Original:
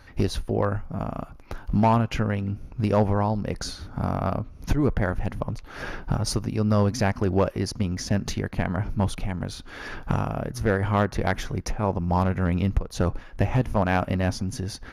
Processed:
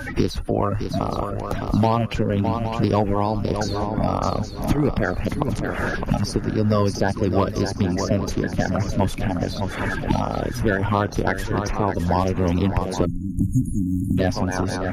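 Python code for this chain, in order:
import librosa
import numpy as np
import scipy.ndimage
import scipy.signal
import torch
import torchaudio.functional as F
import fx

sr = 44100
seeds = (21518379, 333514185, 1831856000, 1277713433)

y = fx.spec_quant(x, sr, step_db=30)
y = fx.echo_swing(y, sr, ms=814, ratio=3, feedback_pct=31, wet_db=-10.5)
y = fx.spec_erase(y, sr, start_s=13.05, length_s=1.13, low_hz=330.0, high_hz=6500.0)
y = fx.band_squash(y, sr, depth_pct=70)
y = y * 10.0 ** (3.0 / 20.0)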